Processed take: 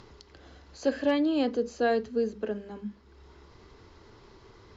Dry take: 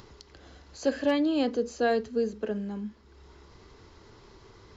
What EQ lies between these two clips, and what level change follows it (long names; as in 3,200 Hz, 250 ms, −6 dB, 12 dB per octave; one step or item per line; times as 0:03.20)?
high-frequency loss of the air 55 metres
mains-hum notches 50/100/150/200 Hz
0.0 dB